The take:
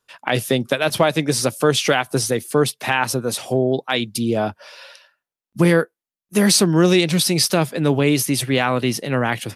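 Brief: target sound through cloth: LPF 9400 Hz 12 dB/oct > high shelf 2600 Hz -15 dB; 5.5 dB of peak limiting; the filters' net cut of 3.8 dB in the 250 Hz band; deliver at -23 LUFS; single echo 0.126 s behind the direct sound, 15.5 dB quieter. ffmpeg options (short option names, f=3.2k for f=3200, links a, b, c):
-af "equalizer=f=250:t=o:g=-5.5,alimiter=limit=-9dB:level=0:latency=1,lowpass=9.4k,highshelf=f=2.6k:g=-15,aecho=1:1:126:0.168,volume=1dB"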